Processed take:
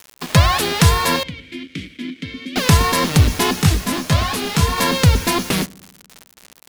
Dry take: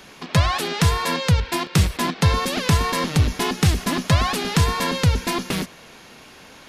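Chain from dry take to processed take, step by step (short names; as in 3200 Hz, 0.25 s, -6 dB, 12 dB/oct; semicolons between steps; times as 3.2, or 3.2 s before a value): high shelf 7700 Hz +4.5 dB; bit-crush 6-bit; 1.23–2.56 vowel filter i; on a send: darkening echo 73 ms, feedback 71%, low-pass 860 Hz, level -23 dB; 3.62–4.78 on the sum: detuned doubles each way 26 cents; gain +5 dB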